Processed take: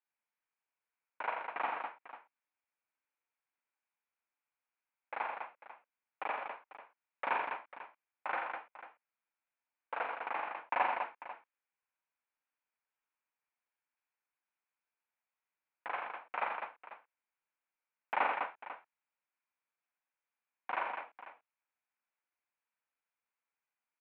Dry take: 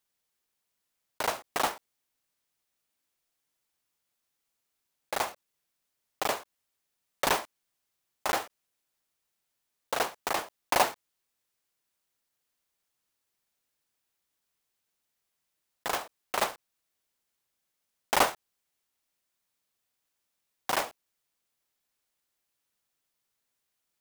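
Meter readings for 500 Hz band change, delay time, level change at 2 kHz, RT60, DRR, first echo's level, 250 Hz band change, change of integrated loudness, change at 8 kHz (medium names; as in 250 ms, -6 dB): -9.5 dB, 45 ms, -4.5 dB, no reverb, no reverb, -5.5 dB, -13.5 dB, -7.5 dB, under -40 dB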